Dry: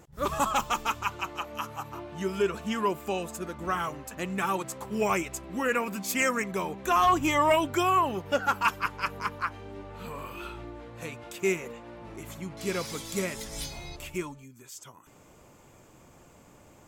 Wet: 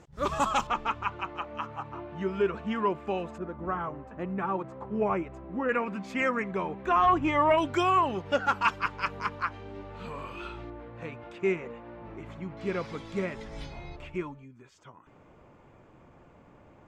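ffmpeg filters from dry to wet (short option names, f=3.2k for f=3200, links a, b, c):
-af "asetnsamples=n=441:p=0,asendcmd='0.67 lowpass f 2300;3.38 lowpass f 1200;5.69 lowpass f 2200;7.58 lowpass f 4900;10.7 lowpass f 2200',lowpass=6.2k"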